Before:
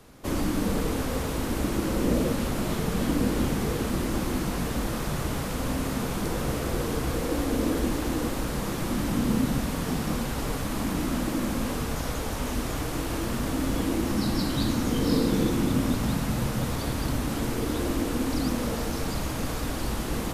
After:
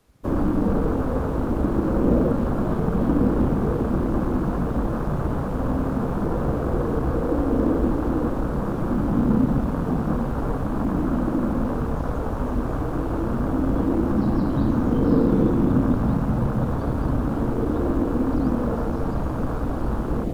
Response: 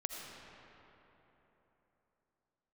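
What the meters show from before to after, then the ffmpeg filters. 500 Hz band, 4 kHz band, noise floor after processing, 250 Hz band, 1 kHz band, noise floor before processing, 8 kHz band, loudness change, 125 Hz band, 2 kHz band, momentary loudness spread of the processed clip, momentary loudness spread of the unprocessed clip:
+5.5 dB, below −10 dB, −26 dBFS, +5.5 dB, +4.0 dB, −31 dBFS, below −15 dB, +4.5 dB, +5.5 dB, −3.5 dB, 6 LU, 5 LU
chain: -filter_complex "[0:a]afwtdn=0.0251,acrusher=bits=8:mode=log:mix=0:aa=0.000001,acrossover=split=3100[link_01][link_02];[link_02]acompressor=threshold=-60dB:ratio=4:attack=1:release=60[link_03];[link_01][link_03]amix=inputs=2:normalize=0,volume=5.5dB"

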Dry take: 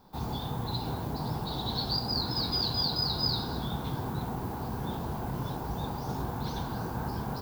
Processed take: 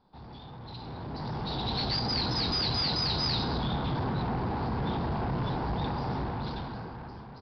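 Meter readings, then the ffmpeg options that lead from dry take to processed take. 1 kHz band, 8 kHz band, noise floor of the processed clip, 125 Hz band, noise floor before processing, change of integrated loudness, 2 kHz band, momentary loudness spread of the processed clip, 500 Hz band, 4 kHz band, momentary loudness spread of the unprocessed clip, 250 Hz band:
+1.5 dB, −5.0 dB, −46 dBFS, +1.0 dB, −37 dBFS, +1.5 dB, +5.0 dB, 16 LU, +2.0 dB, +0.5 dB, 8 LU, +1.5 dB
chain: -af "aresample=11025,asoftclip=type=tanh:threshold=-33.5dB,aresample=44100,dynaudnorm=framelen=290:gausssize=9:maxgain=16dB,volume=-8.5dB"

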